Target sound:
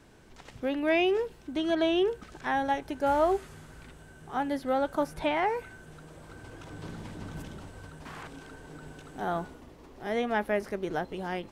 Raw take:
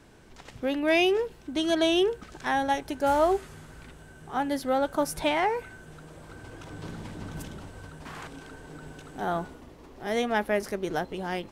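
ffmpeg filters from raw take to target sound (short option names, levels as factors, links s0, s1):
-filter_complex "[0:a]acrossover=split=3200[s0][s1];[s1]acompressor=threshold=0.00355:ratio=4:attack=1:release=60[s2];[s0][s2]amix=inputs=2:normalize=0,volume=0.794"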